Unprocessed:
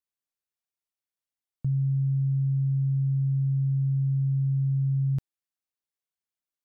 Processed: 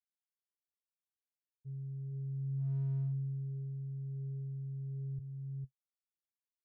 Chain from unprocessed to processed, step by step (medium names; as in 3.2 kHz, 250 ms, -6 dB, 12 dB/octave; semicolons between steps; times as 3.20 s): power-law waveshaper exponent 3; expander -18 dBFS; FFT filter 130 Hz 0 dB, 200 Hz -15 dB, 340 Hz -25 dB, 480 Hz -16 dB, 820 Hz -27 dB; on a send: delay 454 ms -6 dB; on the sum: flange 0.35 Hz, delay 7.1 ms, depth 5.4 ms, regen +43%; slew-rate limiter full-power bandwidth 1.8 Hz; trim +5.5 dB